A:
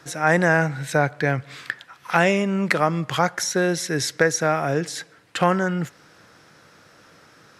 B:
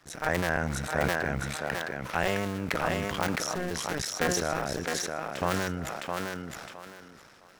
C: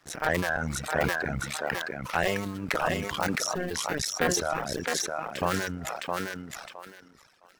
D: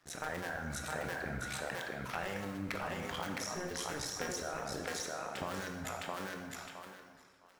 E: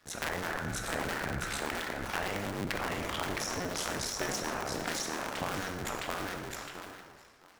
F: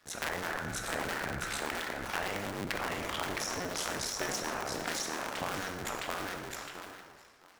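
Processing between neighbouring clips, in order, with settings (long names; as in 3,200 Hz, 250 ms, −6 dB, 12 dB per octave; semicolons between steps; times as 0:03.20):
sub-harmonics by changed cycles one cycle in 2, muted; feedback echo with a high-pass in the loop 662 ms, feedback 25%, high-pass 190 Hz, level −4 dB; level that may fall only so fast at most 23 dB per second; level −8 dB
leveller curve on the samples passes 1; reverb reduction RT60 1.1 s; low-shelf EQ 200 Hz −3 dB
downward compressor, threshold −29 dBFS, peak gain reduction 9.5 dB; on a send at −3 dB: convolution reverb RT60 1.5 s, pre-delay 12 ms; on the sum: level −7 dB
sub-harmonics by changed cycles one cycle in 2, inverted; level +4.5 dB
low-shelf EQ 280 Hz −4.5 dB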